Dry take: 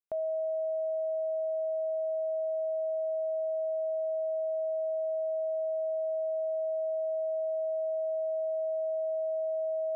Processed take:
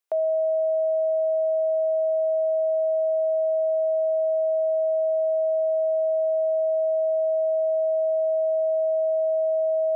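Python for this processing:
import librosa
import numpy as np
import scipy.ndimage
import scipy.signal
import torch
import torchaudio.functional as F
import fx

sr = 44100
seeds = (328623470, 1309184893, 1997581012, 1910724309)

y = scipy.signal.sosfilt(scipy.signal.butter(4, 390.0, 'highpass', fs=sr, output='sos'), x)
y = y * librosa.db_to_amplitude(9.0)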